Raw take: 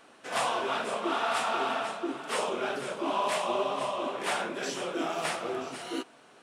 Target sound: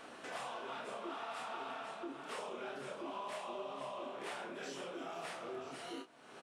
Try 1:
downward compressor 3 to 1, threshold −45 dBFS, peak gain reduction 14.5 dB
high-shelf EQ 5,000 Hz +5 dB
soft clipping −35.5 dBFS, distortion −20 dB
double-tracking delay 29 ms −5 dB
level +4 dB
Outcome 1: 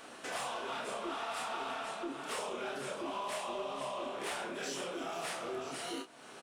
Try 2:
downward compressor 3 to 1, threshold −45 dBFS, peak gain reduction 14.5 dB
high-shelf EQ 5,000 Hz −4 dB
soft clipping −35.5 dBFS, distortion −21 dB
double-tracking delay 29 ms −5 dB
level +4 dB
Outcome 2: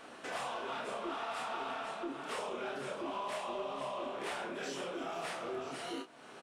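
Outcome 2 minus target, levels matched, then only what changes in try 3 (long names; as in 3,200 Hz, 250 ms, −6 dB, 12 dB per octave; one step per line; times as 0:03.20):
downward compressor: peak gain reduction −5.5 dB
change: downward compressor 3 to 1, threshold −53 dBFS, peak gain reduction 20 dB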